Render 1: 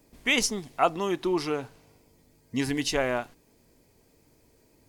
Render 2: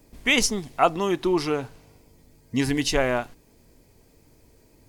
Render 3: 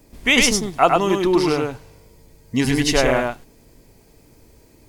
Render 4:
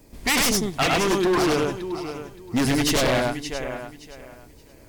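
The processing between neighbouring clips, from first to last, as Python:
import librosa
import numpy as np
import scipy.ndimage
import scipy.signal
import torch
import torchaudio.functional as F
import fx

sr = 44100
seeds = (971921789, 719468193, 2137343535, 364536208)

y1 = fx.low_shelf(x, sr, hz=90.0, db=8.0)
y1 = y1 * 10.0 ** (3.5 / 20.0)
y2 = y1 + 10.0 ** (-3.0 / 20.0) * np.pad(y1, (int(102 * sr / 1000.0), 0))[:len(y1)]
y2 = y2 * 10.0 ** (4.0 / 20.0)
y3 = fx.echo_feedback(y2, sr, ms=571, feedback_pct=23, wet_db=-13.0)
y3 = 10.0 ** (-15.0 / 20.0) * (np.abs((y3 / 10.0 ** (-15.0 / 20.0) + 3.0) % 4.0 - 2.0) - 1.0)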